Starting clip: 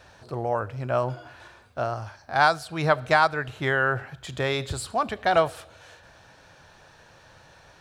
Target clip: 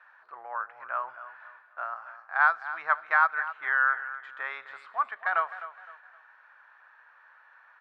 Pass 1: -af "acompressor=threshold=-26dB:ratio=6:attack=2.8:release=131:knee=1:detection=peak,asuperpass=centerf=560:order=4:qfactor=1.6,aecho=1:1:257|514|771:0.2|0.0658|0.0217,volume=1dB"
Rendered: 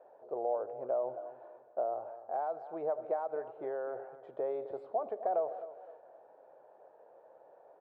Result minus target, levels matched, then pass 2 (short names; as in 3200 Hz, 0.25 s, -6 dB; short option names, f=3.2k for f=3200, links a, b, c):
500 Hz band +19.5 dB; compressor: peak gain reduction +13 dB
-af "asuperpass=centerf=1400:order=4:qfactor=1.6,aecho=1:1:257|514|771:0.2|0.0658|0.0217,volume=1dB"